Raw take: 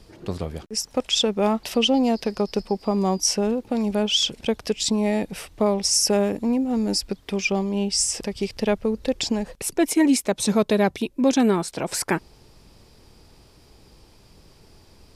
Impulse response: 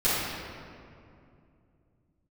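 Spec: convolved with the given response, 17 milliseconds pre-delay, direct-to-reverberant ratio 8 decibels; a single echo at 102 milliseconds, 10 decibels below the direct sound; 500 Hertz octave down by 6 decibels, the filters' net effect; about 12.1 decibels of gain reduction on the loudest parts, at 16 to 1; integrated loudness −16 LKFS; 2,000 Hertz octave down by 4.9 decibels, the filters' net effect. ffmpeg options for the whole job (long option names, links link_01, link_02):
-filter_complex "[0:a]equalizer=frequency=500:width_type=o:gain=-7.5,equalizer=frequency=2000:width_type=o:gain=-6,acompressor=threshold=-29dB:ratio=16,aecho=1:1:102:0.316,asplit=2[link_01][link_02];[1:a]atrim=start_sample=2205,adelay=17[link_03];[link_02][link_03]afir=irnorm=-1:irlink=0,volume=-22.5dB[link_04];[link_01][link_04]amix=inputs=2:normalize=0,volume=16.5dB"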